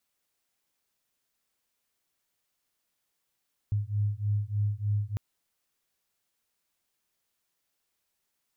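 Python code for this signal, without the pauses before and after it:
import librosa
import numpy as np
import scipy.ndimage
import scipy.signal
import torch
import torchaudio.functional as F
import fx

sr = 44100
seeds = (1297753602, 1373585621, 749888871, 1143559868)

y = fx.two_tone_beats(sr, length_s=1.45, hz=102.0, beat_hz=3.3, level_db=-29.0)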